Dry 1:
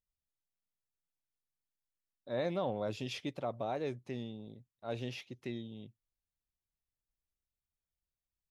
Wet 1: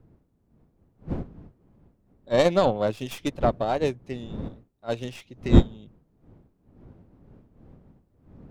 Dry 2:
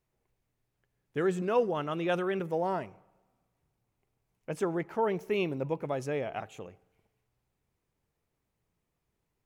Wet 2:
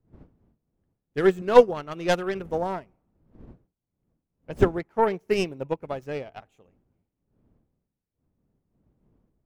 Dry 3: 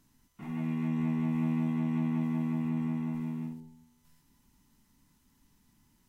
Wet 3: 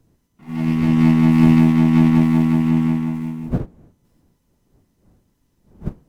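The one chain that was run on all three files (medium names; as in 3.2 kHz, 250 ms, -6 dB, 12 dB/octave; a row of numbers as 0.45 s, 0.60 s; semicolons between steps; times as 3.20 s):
tracing distortion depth 0.12 ms; wind noise 220 Hz -47 dBFS; upward expansion 2.5:1, over -42 dBFS; peak normalisation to -2 dBFS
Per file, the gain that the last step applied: +21.0 dB, +14.5 dB, +19.0 dB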